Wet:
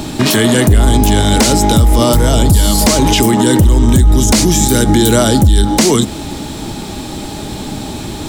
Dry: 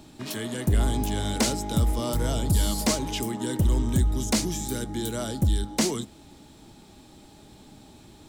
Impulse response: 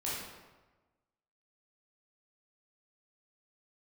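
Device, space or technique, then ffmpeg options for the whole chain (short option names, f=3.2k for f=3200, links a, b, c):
loud club master: -af "acompressor=threshold=-30dB:ratio=1.5,asoftclip=type=hard:threshold=-18dB,alimiter=level_in=27.5dB:limit=-1dB:release=50:level=0:latency=1,volume=-1dB"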